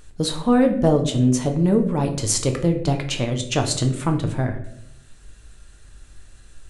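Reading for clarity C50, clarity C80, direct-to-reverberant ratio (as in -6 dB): 10.0 dB, 13.0 dB, 4.0 dB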